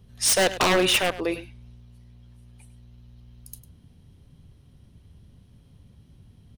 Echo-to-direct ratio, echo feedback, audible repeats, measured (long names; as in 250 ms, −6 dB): −15.0 dB, repeats not evenly spaced, 1